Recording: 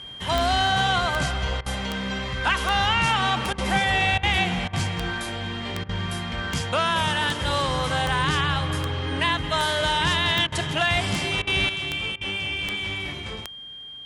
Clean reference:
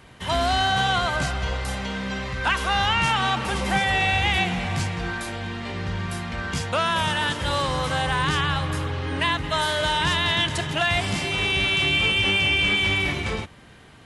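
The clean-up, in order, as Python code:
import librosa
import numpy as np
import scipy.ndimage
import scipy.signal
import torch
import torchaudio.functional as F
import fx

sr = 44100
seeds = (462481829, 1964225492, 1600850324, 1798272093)

y = fx.fix_declick_ar(x, sr, threshold=10.0)
y = fx.notch(y, sr, hz=3200.0, q=30.0)
y = fx.fix_interpolate(y, sr, at_s=(1.61, 3.53, 4.18, 4.68, 5.84, 10.47, 11.42, 12.16), length_ms=50.0)
y = fx.fix_level(y, sr, at_s=11.69, step_db=8.0)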